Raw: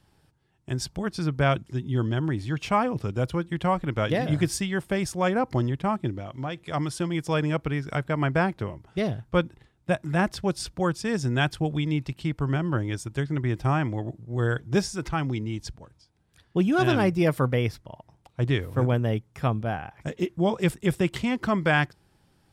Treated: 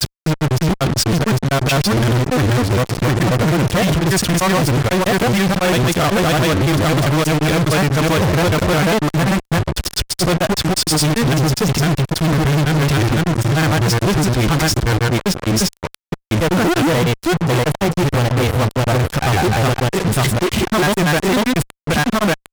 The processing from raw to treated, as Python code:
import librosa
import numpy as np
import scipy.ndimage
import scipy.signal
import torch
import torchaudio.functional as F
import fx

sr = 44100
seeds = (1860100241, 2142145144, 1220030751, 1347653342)

y = fx.rider(x, sr, range_db=4, speed_s=0.5)
y = fx.granulator(y, sr, seeds[0], grain_ms=100.0, per_s=20.0, spray_ms=966.0, spread_st=0)
y = fx.fuzz(y, sr, gain_db=47.0, gate_db=-42.0)